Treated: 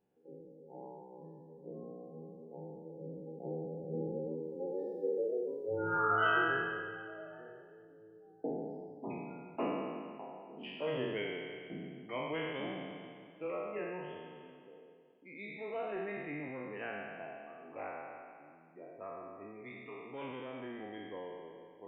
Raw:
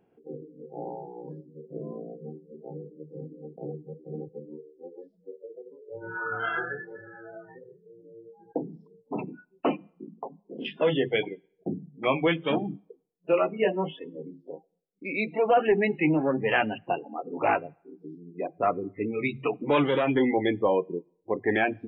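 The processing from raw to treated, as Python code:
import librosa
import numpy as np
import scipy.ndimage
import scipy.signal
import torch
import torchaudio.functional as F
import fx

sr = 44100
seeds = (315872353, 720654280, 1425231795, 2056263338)

y = fx.spec_trails(x, sr, decay_s=2.01)
y = fx.doppler_pass(y, sr, speed_mps=17, closest_m=7.9, pass_at_s=5.21)
y = fx.echo_feedback(y, sr, ms=330, feedback_pct=41, wet_db=-19)
y = F.gain(torch.from_numpy(y), 5.5).numpy()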